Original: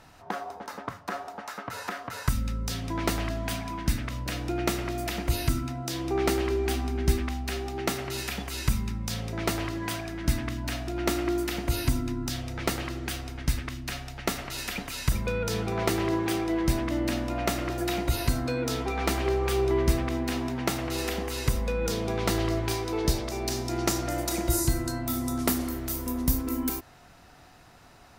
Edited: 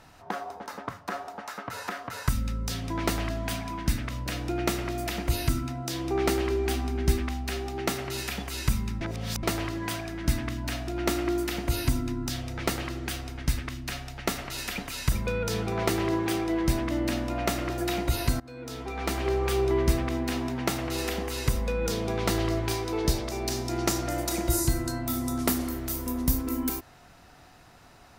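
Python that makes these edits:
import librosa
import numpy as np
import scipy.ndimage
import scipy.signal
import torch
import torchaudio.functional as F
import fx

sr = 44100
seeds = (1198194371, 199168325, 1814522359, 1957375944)

y = fx.edit(x, sr, fx.reverse_span(start_s=9.01, length_s=0.42),
    fx.fade_in_from(start_s=18.4, length_s=0.98, floor_db=-22.0), tone=tone)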